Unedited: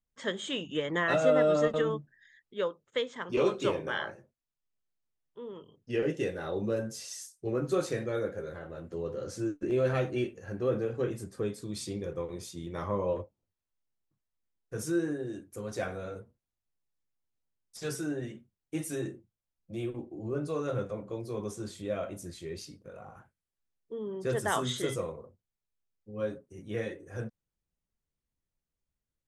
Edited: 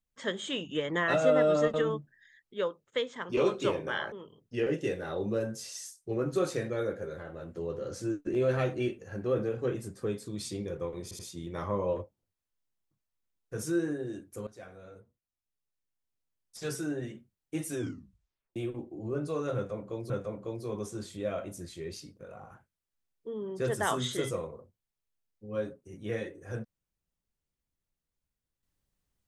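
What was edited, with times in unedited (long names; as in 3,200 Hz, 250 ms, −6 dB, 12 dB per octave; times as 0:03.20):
0:04.12–0:05.48: remove
0:12.39: stutter 0.08 s, 3 plays
0:15.67–0:17.87: fade in, from −17 dB
0:18.94: tape stop 0.82 s
0:20.75–0:21.30: repeat, 2 plays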